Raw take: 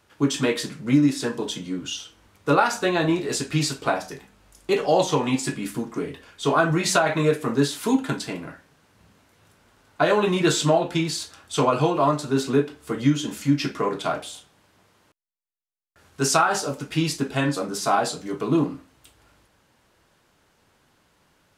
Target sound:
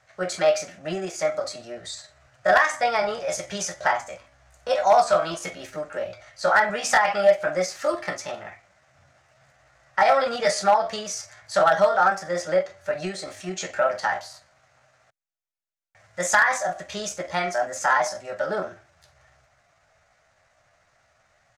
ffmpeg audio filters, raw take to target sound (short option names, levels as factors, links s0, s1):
-af "firequalizer=gain_entry='entry(100,0);entry(150,-13);entry(310,-14);entry(480,8);entry(740,-3);entry(1100,4);entry(2600,-6);entry(5000,1);entry(8600,-17);entry(13000,-26)':delay=0.05:min_phase=1,asoftclip=type=hard:threshold=0.335,asetrate=57191,aresample=44100,atempo=0.771105"